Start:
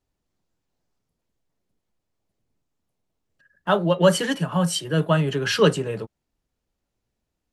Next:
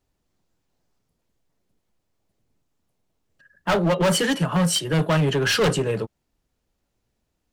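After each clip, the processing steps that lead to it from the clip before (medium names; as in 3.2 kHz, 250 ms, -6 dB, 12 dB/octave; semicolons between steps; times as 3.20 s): hard clipper -21 dBFS, distortion -6 dB; trim +4.5 dB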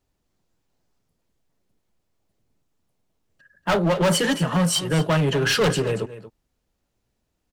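delay 233 ms -14.5 dB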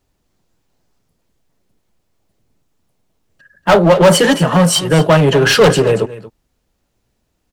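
dynamic bell 610 Hz, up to +5 dB, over -31 dBFS, Q 0.8; trim +8 dB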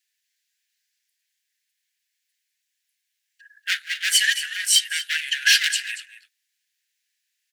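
steep high-pass 1.6 kHz 96 dB/octave; trim -1.5 dB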